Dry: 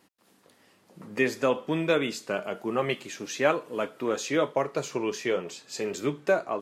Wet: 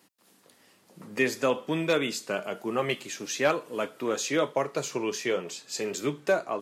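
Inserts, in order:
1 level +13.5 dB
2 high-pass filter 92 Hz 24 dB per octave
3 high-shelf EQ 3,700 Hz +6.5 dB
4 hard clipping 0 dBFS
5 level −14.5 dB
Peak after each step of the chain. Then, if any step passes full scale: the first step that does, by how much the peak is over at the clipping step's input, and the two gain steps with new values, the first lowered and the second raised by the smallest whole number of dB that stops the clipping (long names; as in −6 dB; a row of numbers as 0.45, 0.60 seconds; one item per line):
+4.5, +3.5, +4.5, 0.0, −14.5 dBFS
step 1, 4.5 dB
step 1 +8.5 dB, step 5 −9.5 dB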